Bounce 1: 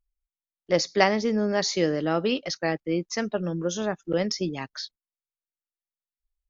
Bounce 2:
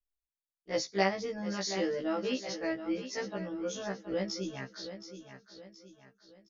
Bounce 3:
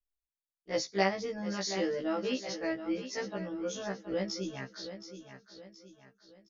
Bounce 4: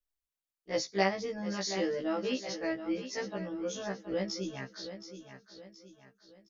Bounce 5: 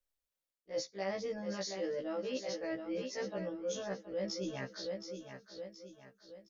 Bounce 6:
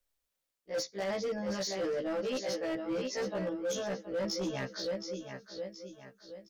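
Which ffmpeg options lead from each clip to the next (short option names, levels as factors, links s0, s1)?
-af "aecho=1:1:722|1444|2166|2888:0.282|0.118|0.0497|0.0209,afftfilt=real='re*1.73*eq(mod(b,3),0)':imag='im*1.73*eq(mod(b,3),0)':win_size=2048:overlap=0.75,volume=0.501"
-af anull
-af "bandreject=f=1400:w=26"
-af "equalizer=f=540:w=4.6:g=9.5,areverse,acompressor=threshold=0.0178:ratio=6,areverse"
-af "asoftclip=type=hard:threshold=0.0178,volume=1.88"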